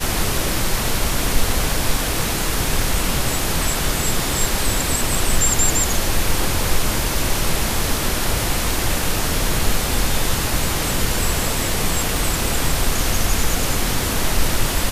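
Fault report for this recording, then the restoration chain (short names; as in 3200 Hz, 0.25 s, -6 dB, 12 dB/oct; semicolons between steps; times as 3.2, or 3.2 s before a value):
12.17 pop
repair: de-click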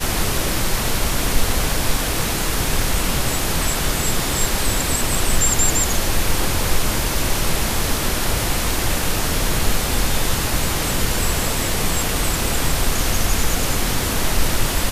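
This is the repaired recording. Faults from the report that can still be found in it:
12.17 pop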